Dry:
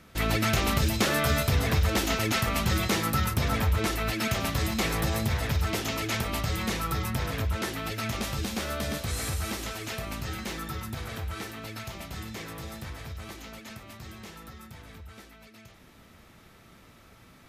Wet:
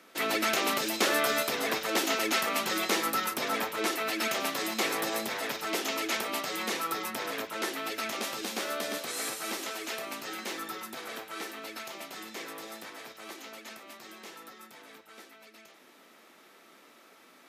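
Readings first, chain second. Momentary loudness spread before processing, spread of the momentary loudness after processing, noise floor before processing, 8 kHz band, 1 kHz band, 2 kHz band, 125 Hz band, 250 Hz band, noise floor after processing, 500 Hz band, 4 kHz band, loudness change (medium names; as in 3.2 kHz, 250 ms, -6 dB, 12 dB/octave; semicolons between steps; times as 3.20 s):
19 LU, 18 LU, -55 dBFS, 0.0 dB, 0.0 dB, 0.0 dB, -25.5 dB, -5.5 dB, -58 dBFS, 0.0 dB, 0.0 dB, -2.0 dB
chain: high-pass 280 Hz 24 dB/octave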